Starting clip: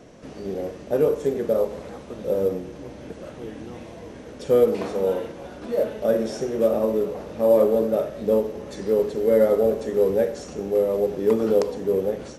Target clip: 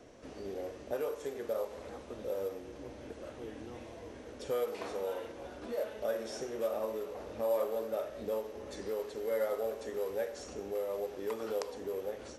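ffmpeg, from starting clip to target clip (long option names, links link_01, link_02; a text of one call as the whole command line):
ffmpeg -i in.wav -filter_complex "[0:a]equalizer=frequency=170:width=2.9:gain=-13,acrossover=split=670|1200[link_01][link_02][link_03];[link_01]acompressor=threshold=-32dB:ratio=10[link_04];[link_04][link_02][link_03]amix=inputs=3:normalize=0,volume=-7dB" out.wav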